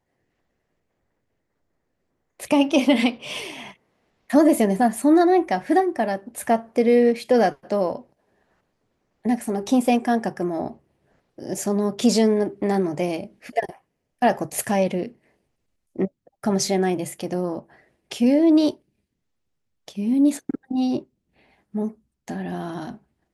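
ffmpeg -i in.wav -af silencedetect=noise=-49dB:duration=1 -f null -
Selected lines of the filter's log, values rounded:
silence_start: 0.00
silence_end: 2.40 | silence_duration: 2.40
silence_start: 8.12
silence_end: 9.25 | silence_duration: 1.12
silence_start: 18.78
silence_end: 19.88 | silence_duration: 1.10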